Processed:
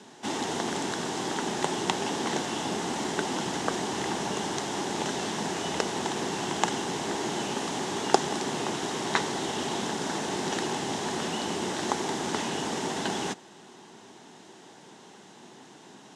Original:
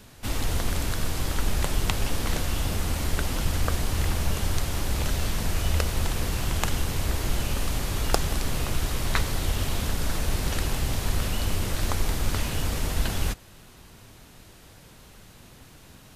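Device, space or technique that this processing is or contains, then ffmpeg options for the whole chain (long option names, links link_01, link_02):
television speaker: -af "highpass=frequency=190:width=0.5412,highpass=frequency=190:width=1.3066,equalizer=frequency=380:width_type=q:width=4:gain=6,equalizer=frequency=540:width_type=q:width=4:gain=-5,equalizer=frequency=850:width_type=q:width=4:gain=7,equalizer=frequency=1300:width_type=q:width=4:gain=-5,equalizer=frequency=2400:width_type=q:width=4:gain=-7,equalizer=frequency=4500:width_type=q:width=4:gain=-6,lowpass=frequency=7500:width=0.5412,lowpass=frequency=7500:width=1.3066,volume=3dB"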